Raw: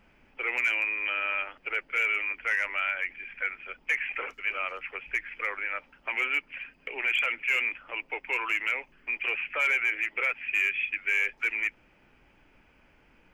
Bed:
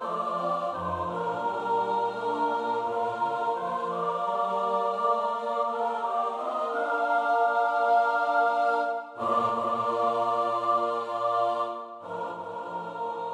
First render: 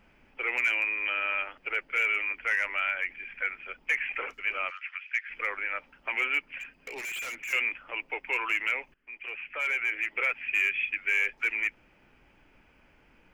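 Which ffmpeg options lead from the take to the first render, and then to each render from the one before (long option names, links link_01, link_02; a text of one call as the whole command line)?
ffmpeg -i in.wav -filter_complex "[0:a]asettb=1/sr,asplit=3[link_01][link_02][link_03];[link_01]atrim=end=4.704[link_04];[link_02]atrim=start=4.7:end=5.3,asetpts=PTS-STARTPTS,afade=type=in:duration=0.004:curve=qsin,afade=type=out:start_time=0.596:duration=0.004:curve=qsin,asuperpass=centerf=3100:order=8:qfactor=0.55[link_05];[link_03]atrim=start=5.296[link_06];[link_04][link_05]acrossfade=duration=0.004:curve1=hsin:curve2=qsin[link_07];[link_07][link_06]acrossfade=duration=0.004:curve1=qsin:curve2=hsin,asettb=1/sr,asplit=3[link_08][link_09][link_10];[link_08]atrim=end=6.594[link_11];[link_09]atrim=start=6.59:end=7.53,asetpts=PTS-STARTPTS,afade=type=in:duration=0.004:curve=qsin,afade=type=out:start_time=0.936:duration=0.004:curve=qsin,volume=34.5dB,asoftclip=hard,volume=-34.5dB[link_12];[link_10]atrim=start=7.526[link_13];[link_11][link_12]acrossfade=duration=0.004:curve1=hsin:curve2=qsin[link_14];[link_14][link_13]acrossfade=duration=0.004:curve1=qsin:curve2=hsin,asplit=2[link_15][link_16];[link_15]atrim=end=8.94,asetpts=PTS-STARTPTS,afade=type=out:start_time=8.936:duration=0.004:curve=hsin:silence=0.112202[link_17];[link_16]atrim=start=8.94,asetpts=PTS-STARTPTS,afade=type=in:duration=1.26:silence=0.112202[link_18];[link_17][link_18]concat=n=2:v=0:a=1" out.wav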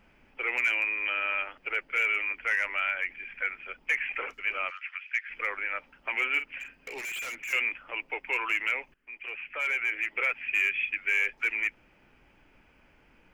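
ffmpeg -i in.wav -filter_complex "[0:a]asettb=1/sr,asplit=3[link_01][link_02][link_03];[link_01]atrim=end=6.294[link_04];[link_02]atrim=start=6.29:end=6.98,asetpts=PTS-STARTPTS,afade=type=in:duration=0.004:curve=qsin,afade=type=out:start_time=0.686:duration=0.004:curve=qsin,asplit=2[link_05][link_06];[link_06]adelay=46,volume=-10dB[link_07];[link_05][link_07]amix=inputs=2:normalize=0,atrim=end_sample=30429[link_08];[link_03]atrim=start=6.976[link_09];[link_04][link_08]acrossfade=duration=0.004:curve1=hsin:curve2=qsin[link_10];[link_10][link_09]acrossfade=duration=0.004:curve1=qsin:curve2=hsin" out.wav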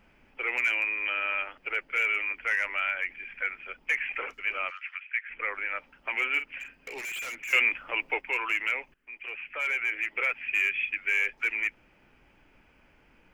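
ffmpeg -i in.wav -filter_complex "[0:a]asplit=3[link_01][link_02][link_03];[link_01]afade=type=out:start_time=4.99:duration=0.02[link_04];[link_02]lowpass=frequency=2900:width=0.5412,lowpass=frequency=2900:width=1.3066,afade=type=in:start_time=4.99:duration=0.02,afade=type=out:start_time=5.53:duration=0.02[link_05];[link_03]afade=type=in:start_time=5.53:duration=0.02[link_06];[link_04][link_05][link_06]amix=inputs=3:normalize=0,asplit=3[link_07][link_08][link_09];[link_07]atrim=end=7.532[link_10];[link_08]atrim=start=7.528:end=8.212,asetpts=PTS-STARTPTS,volume=5dB[link_11];[link_09]atrim=start=8.208[link_12];[link_10][link_11]acrossfade=duration=0.004:curve1=hsin:curve2=hsin[link_13];[link_13][link_12]acrossfade=duration=0.004:curve1=hsin:curve2=hsin" out.wav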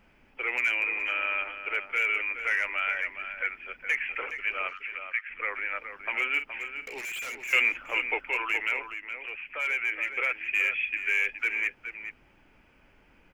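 ffmpeg -i in.wav -filter_complex "[0:a]asplit=2[link_01][link_02];[link_02]adelay=419.8,volume=-8dB,highshelf=frequency=4000:gain=-9.45[link_03];[link_01][link_03]amix=inputs=2:normalize=0" out.wav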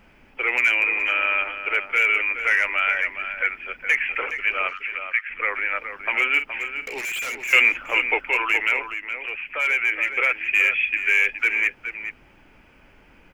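ffmpeg -i in.wav -af "volume=7.5dB" out.wav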